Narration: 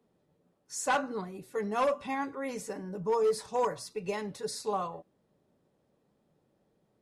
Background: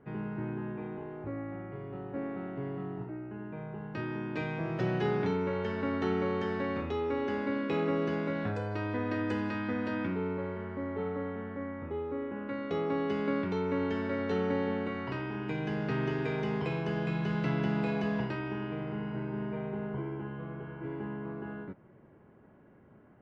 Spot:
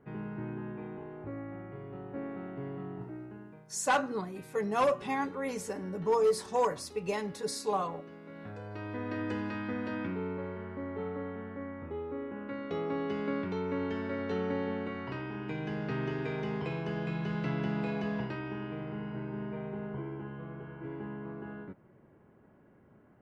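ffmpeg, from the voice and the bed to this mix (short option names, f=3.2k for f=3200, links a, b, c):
-filter_complex "[0:a]adelay=3000,volume=1dB[a];[1:a]volume=12.5dB,afade=t=out:st=3.22:d=0.44:silence=0.177828,afade=t=in:st=8.23:d=1.02:silence=0.177828[b];[a][b]amix=inputs=2:normalize=0"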